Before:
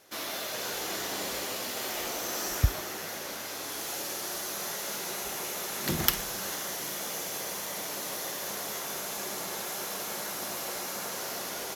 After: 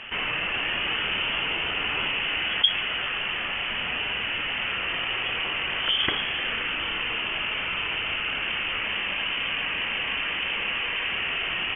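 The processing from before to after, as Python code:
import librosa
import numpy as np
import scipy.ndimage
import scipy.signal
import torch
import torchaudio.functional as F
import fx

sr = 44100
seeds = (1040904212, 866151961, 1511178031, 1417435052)

y = fx.high_shelf(x, sr, hz=2100.0, db=-5.5)
y = fx.freq_invert(y, sr, carrier_hz=3300)
y = fx.env_flatten(y, sr, amount_pct=50)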